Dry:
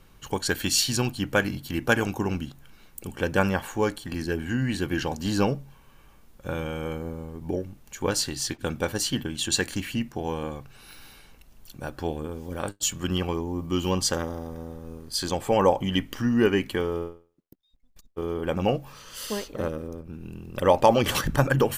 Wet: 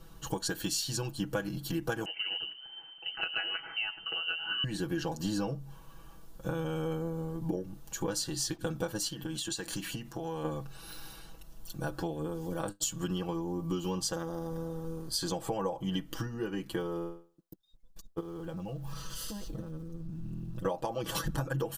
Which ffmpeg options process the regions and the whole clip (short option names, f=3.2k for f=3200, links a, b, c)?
-filter_complex "[0:a]asettb=1/sr,asplit=3[a][b][c];[a]atrim=end=2.054[d];[b]atrim=start=2.05:end=4.64,asetpts=PTS-STARTPTS,afade=t=in:d=0.004:c=qsin,afade=t=out:st=2.586:d=0.004:c=qsin,equalizer=f=680:w=3.8:g=-8,aecho=1:1:104:0.0944,atrim=end_sample=114219,lowpass=f=2.6k:t=q:w=0.5098,lowpass=f=2.6k:t=q:w=0.6013,lowpass=f=2.6k:t=q:w=0.9,lowpass=f=2.6k:t=q:w=2.563,afreqshift=-3100[e];[c]atrim=start=4.636[f];[d][e]acrossfade=d=0.004:c1=hsin:c2=qsin[g];[g][f]acrossfade=d=0.004:c1=qsin:c2=hsin,asettb=1/sr,asplit=3[h][i][j];[h]atrim=end=9.084[k];[i]atrim=start=9.08:end=10.45,asetpts=PTS-STARTPTS,afade=t=in:d=0.004:c=qsin,afade=t=out:st=1.366:d=0.004:c=qsin,lowshelf=f=430:g=-4.5,acompressor=threshold=-33dB:ratio=12:attack=3.2:release=140:knee=1:detection=peak[l];[j]atrim=start=10.446[m];[k][l]acrossfade=d=0.004:c1=hsin:c2=qsin[n];[n][m]acrossfade=d=0.004:c1=qsin:c2=hsin,asettb=1/sr,asplit=3[o][p][q];[o]atrim=end=18.204[r];[p]atrim=start=18.2:end=20.65,asetpts=PTS-STARTPTS,afade=t=in:d=0.004:c=qsin,afade=t=out:st=2.446:d=0.004:c=qsin,asubboost=boost=10:cutoff=220,acompressor=threshold=-37dB:ratio=10:attack=3.2:release=140:knee=1:detection=peak,aeval=exprs='val(0)*gte(abs(val(0)),0.00133)':c=same[s];[q]atrim=start=20.646[t];[r][s]acrossfade=d=0.004:c1=hsin:c2=qsin[u];[u][t]acrossfade=d=0.004:c1=qsin:c2=hsin,equalizer=f=2.2k:t=o:w=0.55:g=-11,acompressor=threshold=-32dB:ratio=10,aecho=1:1:6.1:0.84"